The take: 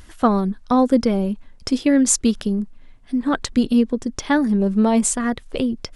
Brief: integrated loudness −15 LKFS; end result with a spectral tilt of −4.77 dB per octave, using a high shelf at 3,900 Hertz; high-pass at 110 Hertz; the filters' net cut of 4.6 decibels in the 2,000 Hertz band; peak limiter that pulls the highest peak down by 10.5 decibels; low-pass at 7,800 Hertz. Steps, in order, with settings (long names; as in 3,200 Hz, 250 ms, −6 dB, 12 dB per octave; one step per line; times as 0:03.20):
high-pass filter 110 Hz
low-pass filter 7,800 Hz
parametric band 2,000 Hz −7.5 dB
high-shelf EQ 3,900 Hz +7 dB
level +7 dB
brickwall limiter −5 dBFS